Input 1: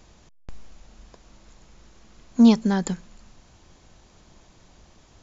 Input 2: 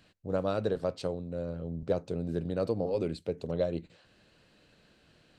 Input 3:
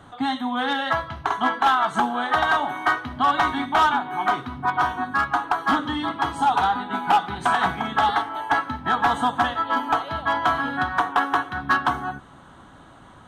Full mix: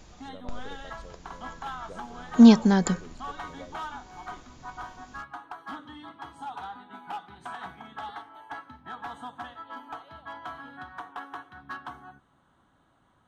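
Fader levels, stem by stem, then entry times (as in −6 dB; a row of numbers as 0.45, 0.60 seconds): +1.5, −16.5, −18.5 decibels; 0.00, 0.00, 0.00 seconds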